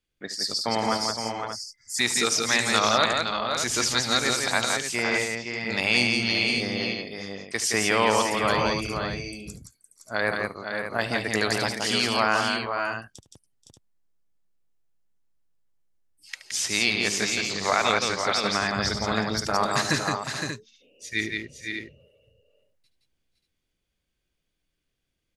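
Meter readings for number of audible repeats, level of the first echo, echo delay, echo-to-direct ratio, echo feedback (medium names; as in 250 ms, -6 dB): 5, -14.0 dB, 74 ms, -1.0 dB, no regular repeats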